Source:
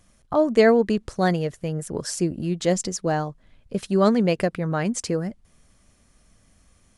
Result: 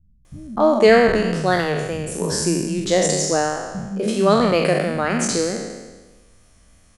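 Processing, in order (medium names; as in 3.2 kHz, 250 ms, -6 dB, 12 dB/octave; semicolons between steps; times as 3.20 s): spectral sustain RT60 1.26 s; vibrato 3.1 Hz 21 cents; bands offset in time lows, highs 250 ms, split 190 Hz; trim +2.5 dB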